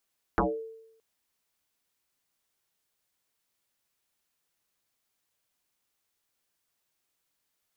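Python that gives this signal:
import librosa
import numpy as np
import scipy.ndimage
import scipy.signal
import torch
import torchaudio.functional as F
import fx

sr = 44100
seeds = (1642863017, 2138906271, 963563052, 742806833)

y = fx.fm2(sr, length_s=0.62, level_db=-19.0, carrier_hz=448.0, ratio=0.29, index=9.7, index_s=0.33, decay_s=0.83, shape='exponential')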